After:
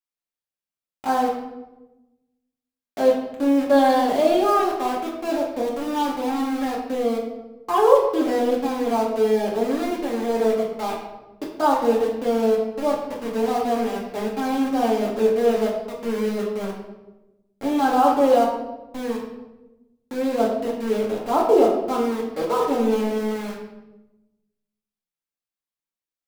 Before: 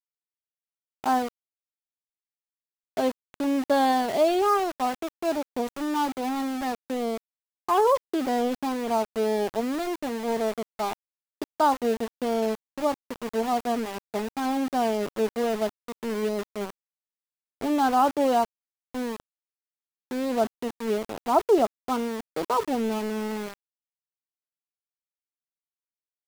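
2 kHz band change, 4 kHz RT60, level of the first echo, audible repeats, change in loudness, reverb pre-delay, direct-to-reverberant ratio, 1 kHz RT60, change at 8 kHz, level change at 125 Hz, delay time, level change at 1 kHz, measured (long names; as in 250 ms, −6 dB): +2.5 dB, 0.70 s, no echo audible, no echo audible, +5.0 dB, 4 ms, −4.0 dB, 0.90 s, +1.0 dB, can't be measured, no echo audible, +3.0 dB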